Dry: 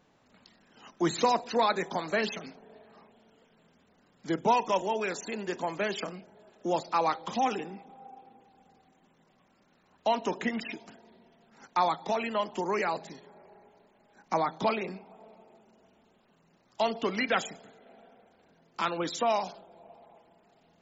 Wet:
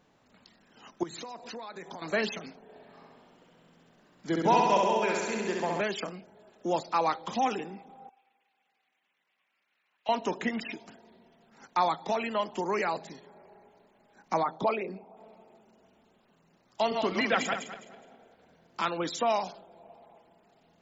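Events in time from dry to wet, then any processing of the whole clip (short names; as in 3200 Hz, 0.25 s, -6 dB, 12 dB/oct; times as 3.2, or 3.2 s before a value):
1.03–2.02 compressor 12:1, threshold -38 dBFS
2.62–5.81 flutter echo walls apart 11.3 m, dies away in 1.4 s
8.09–10.09 band-pass 2400 Hz, Q 2.2
14.43–15.17 formant sharpening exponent 1.5
16.81–18.84 regenerating reverse delay 0.104 s, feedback 49%, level -4 dB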